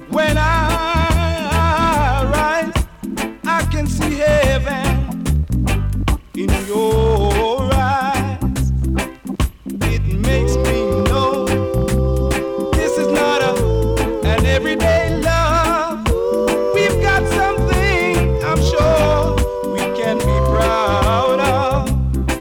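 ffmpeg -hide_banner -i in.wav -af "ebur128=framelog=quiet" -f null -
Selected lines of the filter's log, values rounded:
Integrated loudness:
  I:         -16.7 LUFS
  Threshold: -26.7 LUFS
Loudness range:
  LRA:         2.4 LU
  Threshold: -36.8 LUFS
  LRA low:   -18.1 LUFS
  LRA high:  -15.7 LUFS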